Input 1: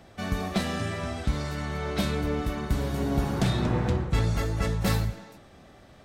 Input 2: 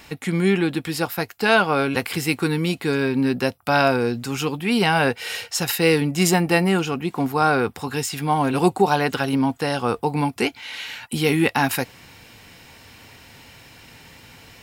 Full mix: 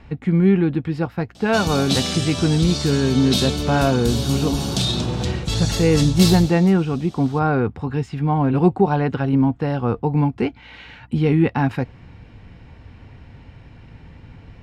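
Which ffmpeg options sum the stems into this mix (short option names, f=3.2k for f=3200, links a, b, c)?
-filter_complex "[0:a]alimiter=limit=-18dB:level=0:latency=1:release=49,aexciter=amount=14.2:drive=4.9:freq=3k,highpass=f=330:p=1,adelay=1350,volume=2dB[a];[1:a]aemphasis=mode=reproduction:type=50kf,volume=-3dB,asplit=3[b][c][d];[b]atrim=end=4.63,asetpts=PTS-STARTPTS,afade=t=out:st=4.626:d=0.004:c=hsin[e];[c]atrim=start=4.63:end=5.25,asetpts=PTS-STARTPTS,volume=0[f];[d]atrim=start=5.25,asetpts=PTS-STARTPTS,afade=t=in:d=0.004:c=hsin[g];[e][f][g]concat=n=3:v=0:a=1[h];[a][h]amix=inputs=2:normalize=0,aemphasis=mode=reproduction:type=riaa,aeval=exprs='val(0)+0.00282*(sin(2*PI*60*n/s)+sin(2*PI*2*60*n/s)/2+sin(2*PI*3*60*n/s)/3+sin(2*PI*4*60*n/s)/4+sin(2*PI*5*60*n/s)/5)':c=same"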